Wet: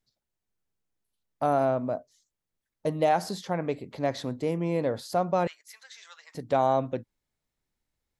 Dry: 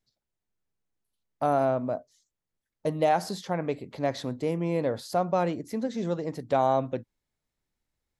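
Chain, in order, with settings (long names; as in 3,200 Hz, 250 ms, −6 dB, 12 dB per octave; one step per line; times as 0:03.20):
0:05.47–0:06.35: high-pass filter 1,400 Hz 24 dB per octave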